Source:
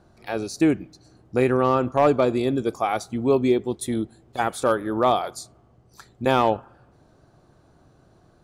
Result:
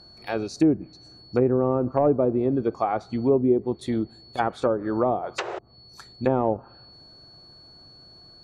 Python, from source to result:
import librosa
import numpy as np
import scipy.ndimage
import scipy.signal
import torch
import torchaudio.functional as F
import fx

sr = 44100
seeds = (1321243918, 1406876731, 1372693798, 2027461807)

y = fx.spec_paint(x, sr, seeds[0], shape='noise', start_s=5.38, length_s=0.21, low_hz=330.0, high_hz=8100.0, level_db=-19.0)
y = y + 10.0 ** (-48.0 / 20.0) * np.sin(2.0 * np.pi * 4400.0 * np.arange(len(y)) / sr)
y = fx.env_lowpass_down(y, sr, base_hz=620.0, full_db=-17.0)